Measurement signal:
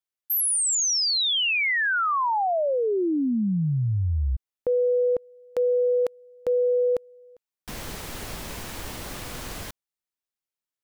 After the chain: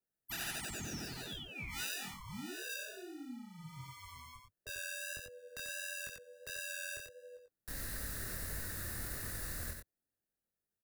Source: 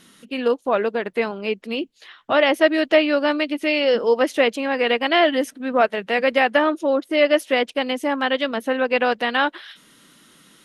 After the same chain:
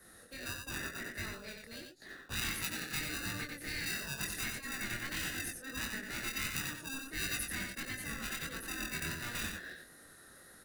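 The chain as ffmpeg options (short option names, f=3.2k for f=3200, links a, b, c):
-filter_complex "[0:a]firequalizer=gain_entry='entry(100,0);entry(200,-19);entry(330,-17);entry(520,3);entry(790,-5);entry(1800,9);entry(2700,-24);entry(3900,0);entry(6100,-2);entry(10000,7)':delay=0.05:min_phase=1,asplit=2[a][b];[b]acrusher=samples=41:mix=1:aa=0.000001,volume=-5dB[c];[a][c]amix=inputs=2:normalize=0,afftfilt=real='re*lt(hypot(re,im),0.316)':imag='im*lt(hypot(re,im),0.316)':win_size=1024:overlap=0.75,acrossover=split=290|1600[d][e][f];[e]acompressor=threshold=-44dB:ratio=10:attack=0.29:release=258:knee=1:detection=peak[g];[d][g][f]amix=inputs=3:normalize=0,adynamicequalizer=threshold=0.00562:dfrequency=4100:dqfactor=1.6:tfrequency=4100:tqfactor=1.6:attack=5:release=100:ratio=0.438:range=2:mode=cutabove:tftype=bell,acrossover=split=300[h][i];[h]acompressor=threshold=-38dB:ratio=3:attack=95:release=135:knee=2.83:detection=peak[j];[j][i]amix=inputs=2:normalize=0,flanger=delay=20:depth=5.8:speed=1.5,aecho=1:1:91:0.562,volume=-5.5dB"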